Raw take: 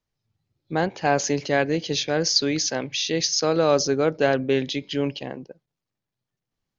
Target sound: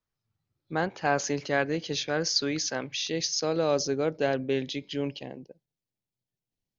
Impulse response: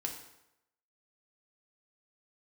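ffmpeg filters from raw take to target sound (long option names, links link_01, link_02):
-af "asetnsamples=nb_out_samples=441:pad=0,asendcmd='3.07 equalizer g -3;5.26 equalizer g -14',equalizer=frequency=1300:width_type=o:width=0.74:gain=6,volume=-6dB"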